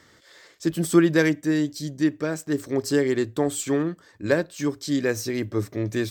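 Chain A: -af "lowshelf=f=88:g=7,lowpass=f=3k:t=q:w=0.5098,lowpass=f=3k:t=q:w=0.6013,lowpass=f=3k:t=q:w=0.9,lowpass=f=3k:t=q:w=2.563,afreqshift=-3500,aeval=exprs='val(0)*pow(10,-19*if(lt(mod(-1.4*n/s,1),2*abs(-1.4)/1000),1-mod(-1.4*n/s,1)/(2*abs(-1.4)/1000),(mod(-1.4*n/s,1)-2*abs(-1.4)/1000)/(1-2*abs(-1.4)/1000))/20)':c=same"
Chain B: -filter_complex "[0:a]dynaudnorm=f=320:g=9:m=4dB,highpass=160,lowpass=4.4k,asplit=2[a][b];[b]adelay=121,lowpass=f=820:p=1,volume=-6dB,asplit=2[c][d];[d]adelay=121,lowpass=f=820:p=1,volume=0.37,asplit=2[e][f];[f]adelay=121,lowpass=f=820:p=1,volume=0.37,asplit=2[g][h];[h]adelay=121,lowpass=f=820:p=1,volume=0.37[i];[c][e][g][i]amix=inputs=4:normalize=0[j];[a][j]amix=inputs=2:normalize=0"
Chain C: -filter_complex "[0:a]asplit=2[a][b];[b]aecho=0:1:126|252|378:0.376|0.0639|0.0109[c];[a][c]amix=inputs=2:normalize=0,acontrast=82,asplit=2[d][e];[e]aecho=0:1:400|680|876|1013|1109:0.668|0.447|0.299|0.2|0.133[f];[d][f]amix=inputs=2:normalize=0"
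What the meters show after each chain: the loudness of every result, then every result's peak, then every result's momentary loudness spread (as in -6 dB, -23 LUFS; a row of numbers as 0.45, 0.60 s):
-27.5, -22.5, -15.0 LUFS; -11.0, -4.5, -1.0 dBFS; 11, 9, 5 LU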